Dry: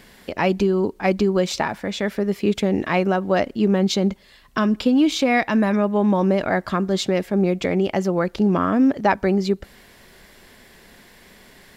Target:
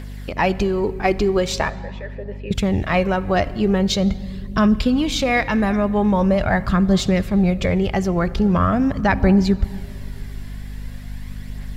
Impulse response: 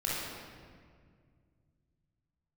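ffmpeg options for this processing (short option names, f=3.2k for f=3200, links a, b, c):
-filter_complex "[0:a]asettb=1/sr,asplit=3[a][b][c];[a]atrim=end=1.694[d];[b]atrim=start=1.69:end=2.51,asetpts=PTS-STARTPTS,afade=t=in:d=0.004:c=qsin,afade=t=out:st=0.816:d=0.004:c=qsin,asplit=3[e][f][g];[e]bandpass=f=530:t=q:w=8,volume=0dB[h];[f]bandpass=f=1.84k:t=q:w=8,volume=-6dB[i];[g]bandpass=f=2.48k:t=q:w=8,volume=-9dB[j];[h][i][j]amix=inputs=3:normalize=0[k];[c]atrim=start=2.506[l];[d][k]acrossfade=d=0.004:c1=hsin:c2=qsin[m];[m][l]acrossfade=d=0.004:c1=qsin:c2=hsin,asplit=2[n][o];[1:a]atrim=start_sample=2205,asetrate=38808,aresample=44100[p];[o][p]afir=irnorm=-1:irlink=0,volume=-22.5dB[q];[n][q]amix=inputs=2:normalize=0,asubboost=boost=10:cutoff=96,aphaser=in_gain=1:out_gain=1:delay=3:decay=0.32:speed=0.43:type=triangular,aeval=exprs='val(0)+0.0251*(sin(2*PI*50*n/s)+sin(2*PI*2*50*n/s)/2+sin(2*PI*3*50*n/s)/3+sin(2*PI*4*50*n/s)/4+sin(2*PI*5*50*n/s)/5)':c=same,volume=1dB"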